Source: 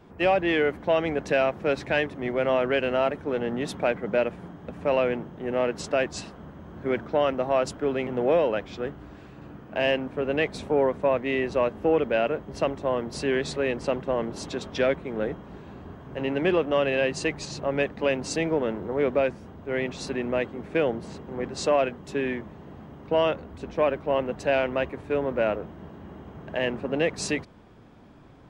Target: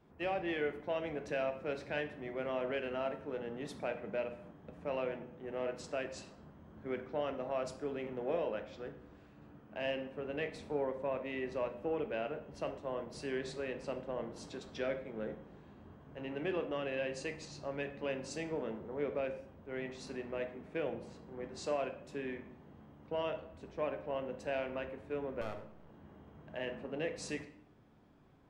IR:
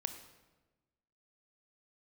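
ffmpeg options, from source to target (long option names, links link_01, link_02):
-filter_complex "[0:a]asettb=1/sr,asplit=3[link_01][link_02][link_03];[link_01]atrim=end=25.414[link_04];[link_02]atrim=start=25.41:end=25.89,asetpts=PTS-STARTPTS,afade=type=in:duration=0.004:curve=qsin,afade=type=out:start_time=0.476:duration=0.004:curve=qsin,aeval=exprs='max(val(0),0)':channel_layout=same[link_05];[link_03]atrim=start=25.886[link_06];[link_04][link_05]acrossfade=duration=0.004:curve1=hsin:curve2=qsin[link_07];[link_07][link_06]acrossfade=duration=0.004:curve1=qsin:curve2=hsin[link_08];[1:a]atrim=start_sample=2205,asetrate=83790,aresample=44100[link_09];[link_08][link_09]afir=irnorm=-1:irlink=0,volume=-7.5dB"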